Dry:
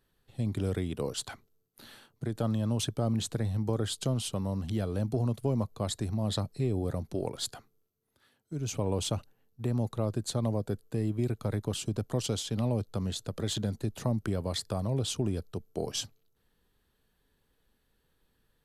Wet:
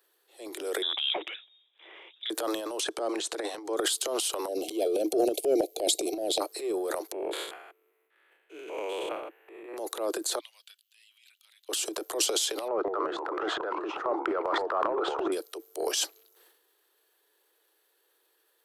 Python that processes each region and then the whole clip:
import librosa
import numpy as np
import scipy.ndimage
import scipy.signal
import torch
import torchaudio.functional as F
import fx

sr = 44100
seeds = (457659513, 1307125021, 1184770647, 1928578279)

y = fx.chain(x, sr, fx.low_shelf(hz=150.0, db=-11.5),
    fx.freq_invert(carrier_hz=3700), at=(0.82, 2.3))
y = fx.chain(y, sr, fx.lowpass(hz=10000.0, slope=24),
    fx.high_shelf(hz=5700.0, db=-6.0), at=(2.8, 3.77))
y = fx.chain(y, sr, fx.brickwall_bandstop(low_hz=780.0, high_hz=2100.0),
    fx.low_shelf(hz=460.0, db=10.5), at=(4.48, 6.4))
y = fx.chain(y, sr, fx.spec_steps(hold_ms=200),
    fx.high_shelf_res(hz=3500.0, db=-14.0, q=3.0), at=(7.12, 9.77))
y = fx.chain(y, sr, fx.ladder_highpass(hz=2700.0, resonance_pct=65),
    fx.peak_eq(hz=12000.0, db=-12.0, octaves=2.2),
    fx.band_squash(depth_pct=70), at=(10.39, 11.69))
y = fx.chain(y, sr, fx.lowpass_res(hz=1300.0, q=6.0),
    fx.echo_pitch(ms=162, semitones=-4, count=2, db_per_echo=-6.0), at=(12.68, 15.32))
y = scipy.signal.sosfilt(scipy.signal.butter(16, 320.0, 'highpass', fs=sr, output='sos'), y)
y = fx.transient(y, sr, attack_db=-6, sustain_db=11)
y = fx.high_shelf(y, sr, hz=9100.0, db=9.5)
y = y * librosa.db_to_amplitude(4.5)